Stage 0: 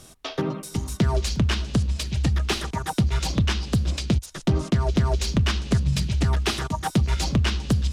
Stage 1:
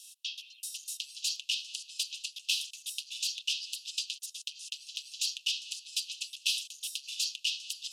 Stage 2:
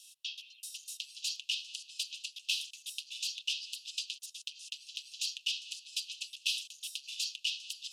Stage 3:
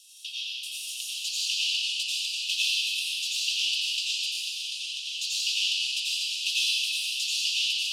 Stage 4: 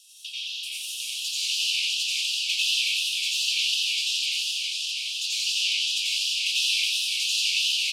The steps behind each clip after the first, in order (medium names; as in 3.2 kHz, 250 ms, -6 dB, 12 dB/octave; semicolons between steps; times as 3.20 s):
Chebyshev high-pass 2.6 kHz, order 8
treble shelf 3.3 kHz -7.5 dB; trim +1.5 dB
reverberation RT60 5.6 s, pre-delay 82 ms, DRR -11.5 dB; trim +1.5 dB
delay 657 ms -6 dB; modulated delay 90 ms, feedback 67%, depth 193 cents, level -5 dB